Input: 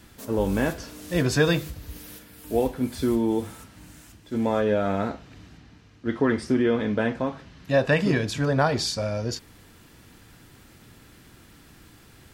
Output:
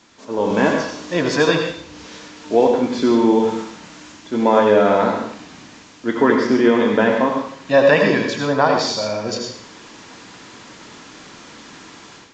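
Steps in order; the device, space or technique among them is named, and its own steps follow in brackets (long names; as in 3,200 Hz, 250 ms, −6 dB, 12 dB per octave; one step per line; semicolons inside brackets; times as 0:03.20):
filmed off a television (band-pass filter 240–7,200 Hz; parametric band 980 Hz +6.5 dB 0.38 octaves; convolution reverb RT60 0.55 s, pre-delay 76 ms, DRR 3 dB; white noise bed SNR 27 dB; automatic gain control gain up to 11 dB; AAC 64 kbit/s 16,000 Hz)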